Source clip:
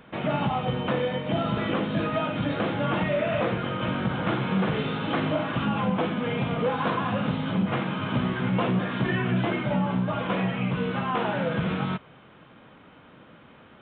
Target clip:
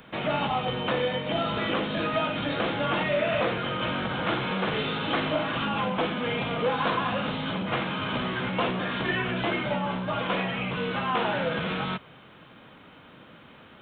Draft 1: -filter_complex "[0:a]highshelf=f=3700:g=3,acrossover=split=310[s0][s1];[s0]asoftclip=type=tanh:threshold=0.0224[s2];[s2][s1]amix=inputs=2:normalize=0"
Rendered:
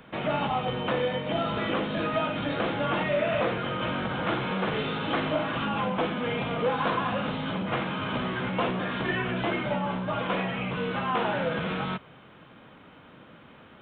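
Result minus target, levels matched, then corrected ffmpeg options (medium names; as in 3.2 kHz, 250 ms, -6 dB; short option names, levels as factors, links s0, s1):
4 kHz band -2.5 dB
-filter_complex "[0:a]highshelf=f=3700:g=11.5,acrossover=split=310[s0][s1];[s0]asoftclip=type=tanh:threshold=0.0224[s2];[s2][s1]amix=inputs=2:normalize=0"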